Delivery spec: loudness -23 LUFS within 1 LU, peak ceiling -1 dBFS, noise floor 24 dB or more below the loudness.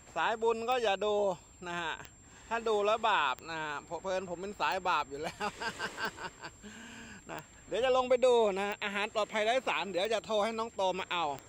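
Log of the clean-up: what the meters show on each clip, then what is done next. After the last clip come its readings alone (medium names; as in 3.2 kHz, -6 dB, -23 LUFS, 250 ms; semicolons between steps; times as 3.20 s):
clicks found 9; steady tone 7.4 kHz; tone level -58 dBFS; loudness -32.5 LUFS; peak level -16.5 dBFS; loudness target -23.0 LUFS
-> de-click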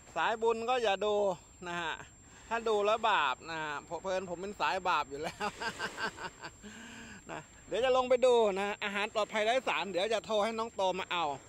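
clicks found 0; steady tone 7.4 kHz; tone level -58 dBFS
-> band-stop 7.4 kHz, Q 30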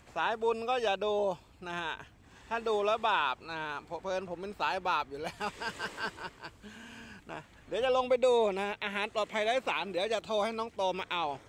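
steady tone not found; loudness -32.5 LUFS; peak level -16.5 dBFS; loudness target -23.0 LUFS
-> trim +9.5 dB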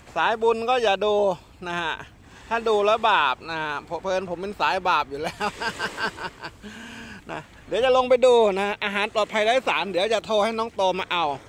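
loudness -23.0 LUFS; peak level -7.0 dBFS; noise floor -49 dBFS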